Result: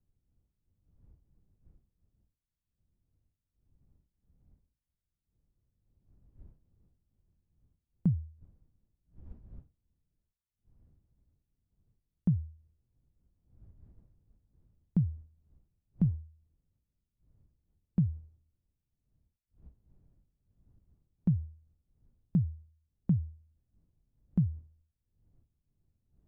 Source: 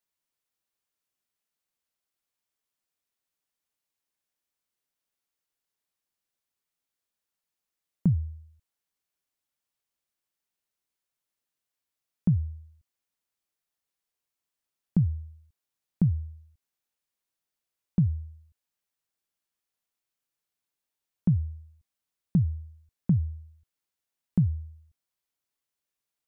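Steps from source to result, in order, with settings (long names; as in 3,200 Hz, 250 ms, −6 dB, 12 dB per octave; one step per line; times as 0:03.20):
wind on the microphone 88 Hz −49 dBFS
expander for the loud parts 1.5 to 1, over −43 dBFS
level −3.5 dB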